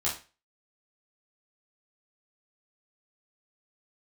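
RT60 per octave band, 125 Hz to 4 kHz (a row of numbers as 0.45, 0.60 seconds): 0.35, 0.30, 0.30, 0.30, 0.35, 0.30 seconds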